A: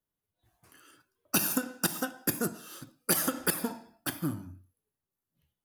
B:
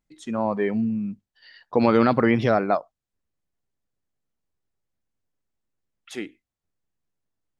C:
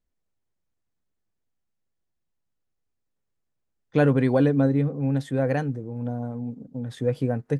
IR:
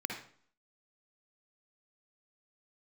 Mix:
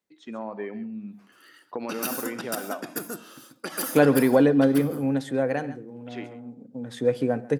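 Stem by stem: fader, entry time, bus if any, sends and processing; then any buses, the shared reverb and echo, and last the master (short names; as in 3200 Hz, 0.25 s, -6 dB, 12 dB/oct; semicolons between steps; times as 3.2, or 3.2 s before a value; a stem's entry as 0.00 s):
+1.0 dB, 0.55 s, bus A, no send, echo send -4.5 dB, dry
-4.5 dB, 0.00 s, bus A, send -19.5 dB, echo send -18 dB, compressor 2.5:1, threshold -21 dBFS, peak gain reduction 6 dB
+2.5 dB, 0.00 s, no bus, send -18 dB, echo send -19 dB, auto duck -12 dB, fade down 0.85 s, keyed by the second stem
bus A: 0.0 dB, LPF 4200 Hz 12 dB/oct; compressor 2:1, threshold -33 dBFS, peak gain reduction 7 dB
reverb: on, RT60 0.50 s, pre-delay 48 ms
echo: echo 0.136 s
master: HPF 230 Hz 12 dB/oct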